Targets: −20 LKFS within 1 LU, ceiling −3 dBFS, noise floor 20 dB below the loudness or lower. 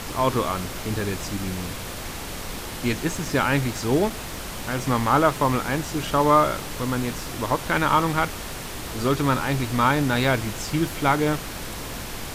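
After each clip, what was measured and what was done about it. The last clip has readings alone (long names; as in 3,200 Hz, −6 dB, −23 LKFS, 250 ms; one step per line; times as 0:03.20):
number of dropouts 4; longest dropout 2.5 ms; background noise floor −34 dBFS; target noise floor −44 dBFS; integrated loudness −24.0 LKFS; sample peak −5.0 dBFS; target loudness −20.0 LKFS
→ repair the gap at 0:03.25/0:04.10/0:06.07/0:10.24, 2.5 ms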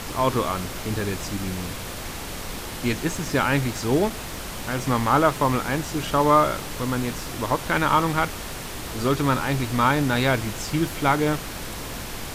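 number of dropouts 0; background noise floor −34 dBFS; target noise floor −44 dBFS
→ noise reduction from a noise print 10 dB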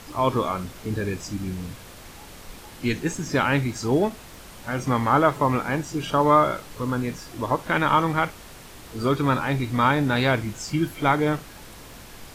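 background noise floor −44 dBFS; integrated loudness −24.0 LKFS; sample peak −5.5 dBFS; target loudness −20.0 LKFS
→ level +4 dB
brickwall limiter −3 dBFS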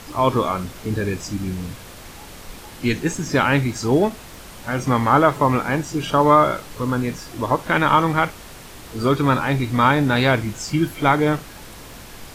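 integrated loudness −20.0 LKFS; sample peak −3.0 dBFS; background noise floor −40 dBFS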